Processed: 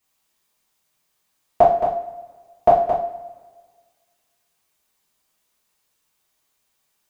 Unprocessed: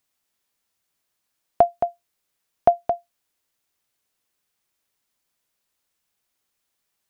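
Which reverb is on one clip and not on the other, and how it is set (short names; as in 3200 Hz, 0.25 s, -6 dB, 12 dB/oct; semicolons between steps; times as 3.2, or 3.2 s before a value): two-slope reverb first 0.46 s, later 1.6 s, from -17 dB, DRR -9.5 dB; gain -3.5 dB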